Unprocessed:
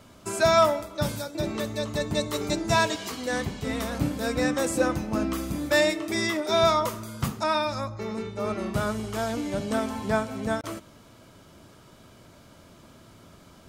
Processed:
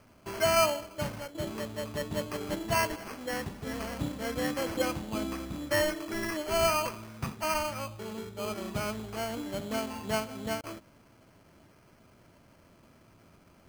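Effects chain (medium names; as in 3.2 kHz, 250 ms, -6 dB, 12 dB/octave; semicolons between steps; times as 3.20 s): dynamic bell 1 kHz, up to +3 dB, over -36 dBFS, Q 0.73; sample-and-hold 12×; trim -7.5 dB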